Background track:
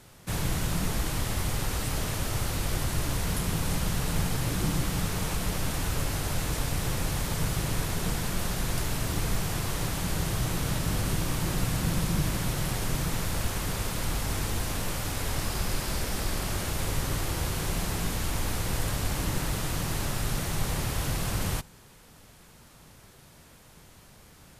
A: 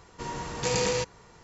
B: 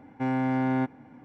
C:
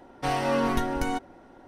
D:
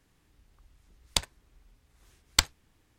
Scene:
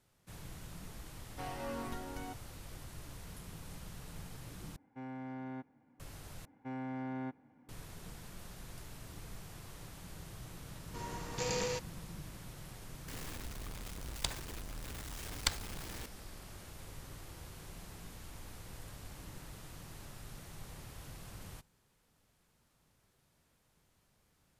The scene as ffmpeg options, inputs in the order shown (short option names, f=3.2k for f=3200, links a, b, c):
-filter_complex "[2:a]asplit=2[a][b];[0:a]volume=-20dB[c];[4:a]aeval=exprs='val(0)+0.5*0.0355*sgn(val(0))':c=same[d];[c]asplit=3[e][f][g];[e]atrim=end=4.764[h];[a]atrim=end=1.24,asetpts=PTS-STARTPTS,volume=-18dB[i];[f]atrim=start=5.996:end=6.454[j];[b]atrim=end=1.24,asetpts=PTS-STARTPTS,volume=-14.5dB[k];[g]atrim=start=7.686[l];[3:a]atrim=end=1.67,asetpts=PTS-STARTPTS,volume=-16.5dB,afade=t=in:d=0.004:c=hsin,afade=t=out:st=1.666:d=0.004:c=hsin,adelay=1150[m];[1:a]atrim=end=1.43,asetpts=PTS-STARTPTS,volume=-9dB,afade=t=in:d=0.004:c=hsin,afade=t=out:st=1.426:d=0.004:c=hsin,adelay=10750[n];[d]atrim=end=2.98,asetpts=PTS-STARTPTS,volume=-10.5dB,afade=t=in:d=0.004:c=hsin,afade=t=out:st=2.976:d=0.004:c=hsin,adelay=13080[o];[h][i]acrossfade=d=0.004:c1=hsin:c2=hsin[p];[p][j]acrossfade=d=0.004:c1=hsin:c2=hsin[q];[q][k]acrossfade=d=0.004:c1=hsin:c2=hsin[r];[r][l]acrossfade=d=0.004:c1=hsin:c2=hsin[s];[s][m][n][o]amix=inputs=4:normalize=0"